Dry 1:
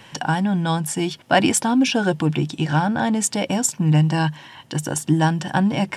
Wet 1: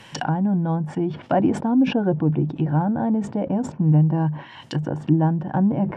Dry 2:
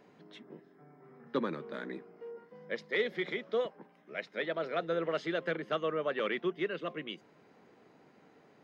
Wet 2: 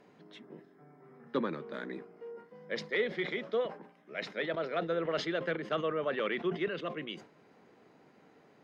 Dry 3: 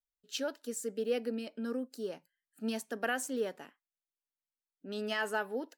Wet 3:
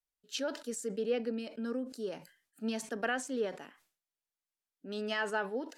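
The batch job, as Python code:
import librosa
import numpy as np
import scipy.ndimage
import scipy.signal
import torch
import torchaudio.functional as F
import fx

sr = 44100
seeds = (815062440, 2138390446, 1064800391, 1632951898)

y = fx.env_lowpass_down(x, sr, base_hz=680.0, full_db=-20.0)
y = fx.sustainer(y, sr, db_per_s=130.0)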